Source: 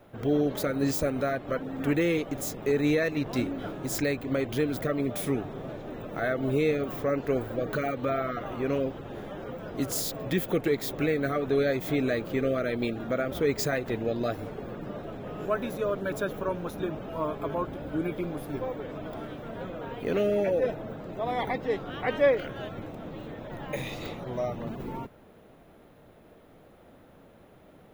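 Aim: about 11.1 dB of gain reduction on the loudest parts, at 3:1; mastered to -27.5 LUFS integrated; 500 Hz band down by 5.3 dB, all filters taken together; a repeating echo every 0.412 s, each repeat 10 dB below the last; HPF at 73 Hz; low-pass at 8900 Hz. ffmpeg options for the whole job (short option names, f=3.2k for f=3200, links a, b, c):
-af "highpass=73,lowpass=8.9k,equalizer=f=500:t=o:g=-6.5,acompressor=threshold=-39dB:ratio=3,aecho=1:1:412|824|1236|1648:0.316|0.101|0.0324|0.0104,volume=13dB"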